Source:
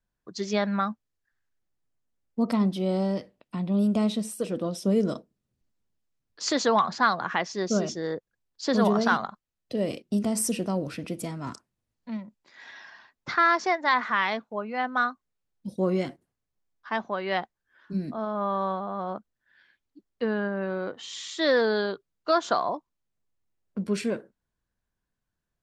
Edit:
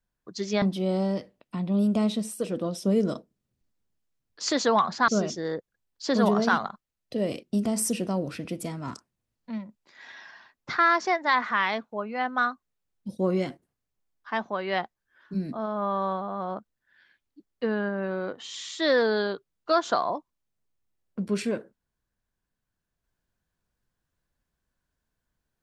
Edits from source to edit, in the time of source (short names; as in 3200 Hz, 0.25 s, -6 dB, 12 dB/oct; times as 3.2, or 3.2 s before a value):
0.62–2.62 cut
7.08–7.67 cut